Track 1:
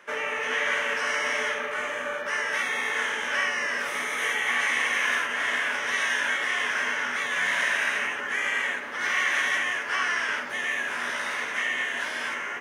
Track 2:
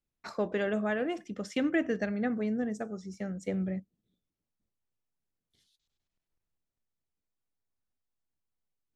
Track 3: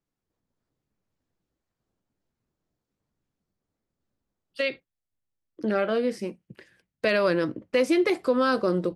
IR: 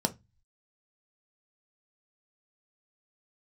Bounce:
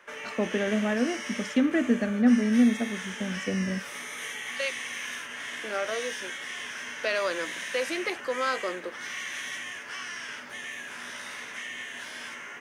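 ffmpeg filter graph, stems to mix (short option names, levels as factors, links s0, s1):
-filter_complex "[0:a]acrossover=split=270|3000[s0][s1][s2];[s1]acompressor=threshold=0.01:ratio=3[s3];[s0][s3][s2]amix=inputs=3:normalize=0,volume=0.708[s4];[1:a]equalizer=f=240:t=o:w=0.21:g=14,volume=1.19[s5];[2:a]highpass=600,volume=0.75[s6];[s4][s5][s6]amix=inputs=3:normalize=0"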